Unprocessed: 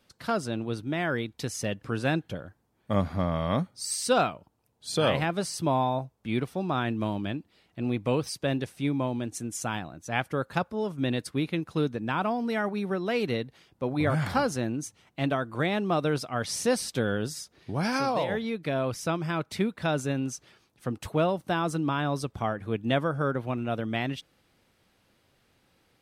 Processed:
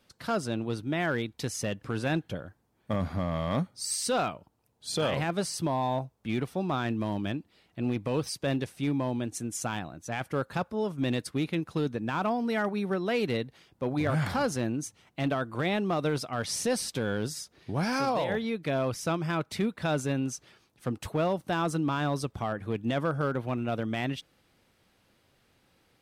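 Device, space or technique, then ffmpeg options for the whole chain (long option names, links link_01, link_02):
limiter into clipper: -af "alimiter=limit=-19dB:level=0:latency=1:release=18,asoftclip=type=hard:threshold=-21dB"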